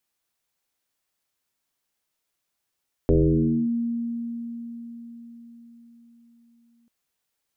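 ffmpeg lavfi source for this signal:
-f lavfi -i "aevalsrc='0.2*pow(10,-3*t/4.97)*sin(2*PI*234*t+3.1*clip(1-t/0.6,0,1)*sin(2*PI*0.36*234*t))':d=3.79:s=44100"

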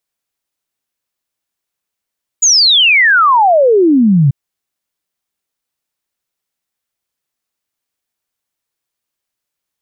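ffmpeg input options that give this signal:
-f lavfi -i "aevalsrc='0.531*clip(min(t,1.89-t)/0.01,0,1)*sin(2*PI*7000*1.89/log(130/7000)*(exp(log(130/7000)*t/1.89)-1))':d=1.89:s=44100"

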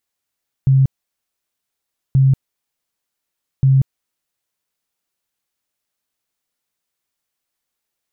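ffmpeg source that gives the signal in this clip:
-f lavfi -i "aevalsrc='0.376*sin(2*PI*134*mod(t,1.48))*lt(mod(t,1.48),25/134)':d=4.44:s=44100"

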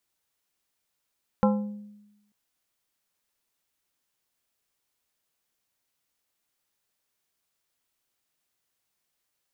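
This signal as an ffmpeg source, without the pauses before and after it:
-f lavfi -i "aevalsrc='0.133*pow(10,-3*t/1.01)*sin(2*PI*207*t)+0.0944*pow(10,-3*t/0.532)*sin(2*PI*517.5*t)+0.0668*pow(10,-3*t/0.383)*sin(2*PI*828*t)+0.0473*pow(10,-3*t/0.327)*sin(2*PI*1035*t)+0.0335*pow(10,-3*t/0.272)*sin(2*PI*1345.5*t)':d=0.89:s=44100"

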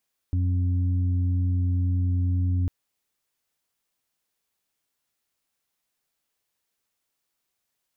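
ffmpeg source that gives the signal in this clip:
-f lavfi -i "aevalsrc='0.0944*sin(2*PI*89.8*t)+0.0112*sin(2*PI*179.6*t)+0.0211*sin(2*PI*269.4*t)':d=2.35:s=44100"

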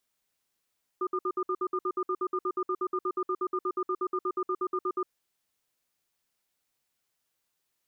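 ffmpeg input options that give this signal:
-f lavfi -i "aevalsrc='0.0355*(sin(2*PI*369*t)+sin(2*PI*1210*t))*clip(min(mod(t,0.12),0.06-mod(t,0.12))/0.005,0,1)':d=4.08:s=44100"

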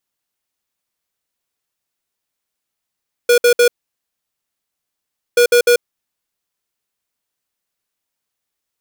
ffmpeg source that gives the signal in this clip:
-f lavfi -i "aevalsrc='0.316*(2*lt(mod(482*t,1),0.5)-1)*clip(min(mod(mod(t,2.08),0.15),0.09-mod(mod(t,2.08),0.15))/0.005,0,1)*lt(mod(t,2.08),0.45)':d=4.16:s=44100"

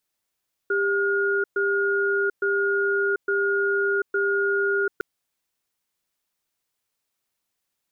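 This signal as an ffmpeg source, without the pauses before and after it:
-f lavfi -i "aevalsrc='0.075*(sin(2*PI*398*t)+sin(2*PI*1430*t))*clip(min(mod(t,0.86),0.74-mod(t,0.86))/0.005,0,1)':d=4.31:s=44100"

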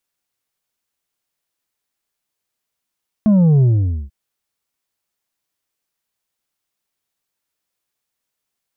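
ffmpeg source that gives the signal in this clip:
-f lavfi -i "aevalsrc='0.335*clip((0.84-t)/0.48,0,1)*tanh(1.78*sin(2*PI*220*0.84/log(65/220)*(exp(log(65/220)*t/0.84)-1)))/tanh(1.78)':d=0.84:s=44100"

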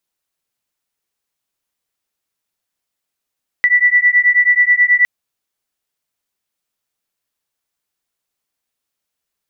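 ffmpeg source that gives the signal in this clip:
-f lavfi -i "aevalsrc='0.251*(sin(2*PI*1960*t)+sin(2*PI*1969.3*t))':d=1.41:s=44100"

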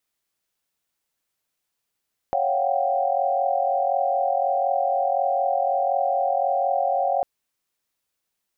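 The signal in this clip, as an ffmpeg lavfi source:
-f lavfi -i "aevalsrc='0.0562*(sin(2*PI*554.37*t)+sin(2*PI*698.46*t)+sin(2*PI*739.99*t)+sin(2*PI*783.99*t))':d=4.9:s=44100"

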